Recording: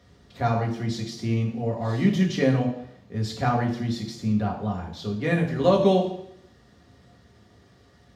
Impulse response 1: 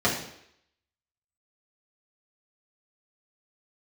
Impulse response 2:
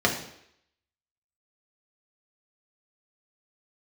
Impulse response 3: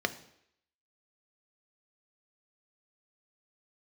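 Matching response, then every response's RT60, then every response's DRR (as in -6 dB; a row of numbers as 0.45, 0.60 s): 2; 0.75, 0.75, 0.75 s; -6.5, -1.0, 9.0 dB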